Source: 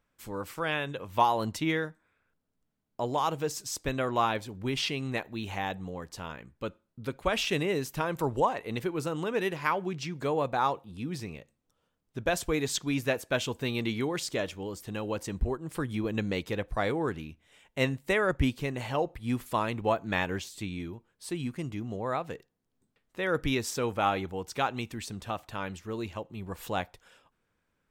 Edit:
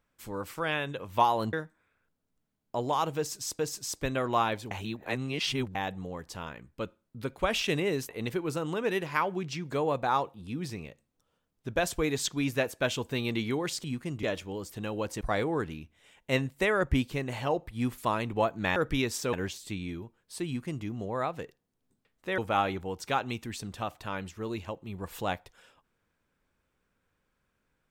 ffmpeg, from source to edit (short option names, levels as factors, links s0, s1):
-filter_complex "[0:a]asplit=12[s0][s1][s2][s3][s4][s5][s6][s7][s8][s9][s10][s11];[s0]atrim=end=1.532[s12];[s1]atrim=start=1.778:end=3.842[s13];[s2]atrim=start=3.418:end=4.542[s14];[s3]atrim=start=4.538:end=5.582,asetpts=PTS-STARTPTS,areverse[s15];[s4]atrim=start=5.578:end=7.922[s16];[s5]atrim=start=8.588:end=14.342[s17];[s6]atrim=start=21.368:end=21.762[s18];[s7]atrim=start=14.338:end=15.322[s19];[s8]atrim=start=16.688:end=20.242[s20];[s9]atrim=start=23.288:end=23.862[s21];[s10]atrim=start=20.238:end=23.292[s22];[s11]atrim=start=23.858[s23];[s12][s13]acrossfade=d=0.004:c1=hsin:c2=hsin[s24];[s24][s14]acrossfade=d=0.004:c1=hsin:c2=hsin[s25];[s25][s15]acrossfade=d=0.004:c1=hsin:c2=hsin[s26];[s26][s16]acrossfade=d=0.004:c1=hsin:c2=hsin[s27];[s27][s17]acrossfade=d=0.004:c1=hsin:c2=hsin[s28];[s28][s18]acrossfade=d=0.004:c1=hsin:c2=hsin[s29];[s29][s19]acrossfade=d=0.004:c1=hsin:c2=hsin[s30];[s30][s20]acrossfade=d=0.004:c1=hsin:c2=hsin[s31];[s31][s21]acrossfade=d=0.004:c1=hsin:c2=hsin[s32];[s32][s22]acrossfade=d=0.004:c1=hsin:c2=hsin[s33];[s33][s23]acrossfade=d=0.004:c1=hsin:c2=hsin"